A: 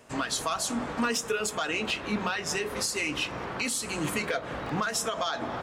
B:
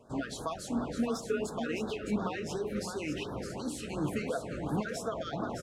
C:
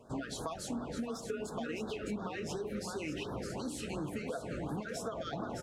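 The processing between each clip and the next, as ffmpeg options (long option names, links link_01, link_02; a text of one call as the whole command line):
ffmpeg -i in.wav -af "tiltshelf=frequency=1400:gain=7,aecho=1:1:612:0.447,afftfilt=real='re*(1-between(b*sr/1024,830*pow(2500/830,0.5+0.5*sin(2*PI*2.8*pts/sr))/1.41,830*pow(2500/830,0.5+0.5*sin(2*PI*2.8*pts/sr))*1.41))':imag='im*(1-between(b*sr/1024,830*pow(2500/830,0.5+0.5*sin(2*PI*2.8*pts/sr))/1.41,830*pow(2500/830,0.5+0.5*sin(2*PI*2.8*pts/sr))*1.41))':win_size=1024:overlap=0.75,volume=-7.5dB" out.wav
ffmpeg -i in.wav -af "bandreject=frequency=292.8:width_type=h:width=4,bandreject=frequency=585.6:width_type=h:width=4,bandreject=frequency=878.4:width_type=h:width=4,bandreject=frequency=1171.2:width_type=h:width=4,bandreject=frequency=1464:width_type=h:width=4,bandreject=frequency=1756.8:width_type=h:width=4,acompressor=threshold=-36dB:ratio=6,volume=1dB" out.wav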